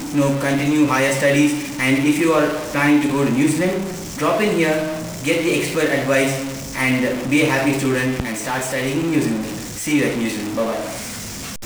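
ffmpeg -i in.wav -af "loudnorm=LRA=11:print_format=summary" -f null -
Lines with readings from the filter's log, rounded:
Input Integrated:    -19.4 LUFS
Input True Peak:      -4.3 dBTP
Input LRA:             4.6 LU
Input Threshold:     -29.4 LUFS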